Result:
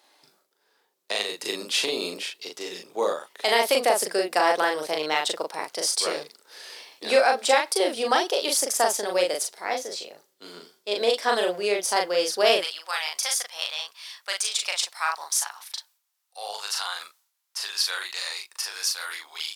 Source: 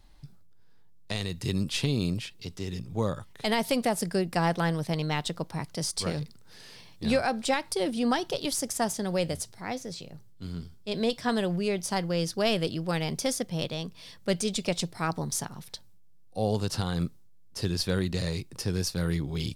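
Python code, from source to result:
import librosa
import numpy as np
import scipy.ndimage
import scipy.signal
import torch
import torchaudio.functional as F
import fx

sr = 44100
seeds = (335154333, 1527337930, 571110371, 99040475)

y = fx.highpass(x, sr, hz=fx.steps((0.0, 400.0), (12.6, 930.0)), slope=24)
y = fx.doubler(y, sr, ms=39.0, db=-3.0)
y = F.gain(torch.from_numpy(y), 6.0).numpy()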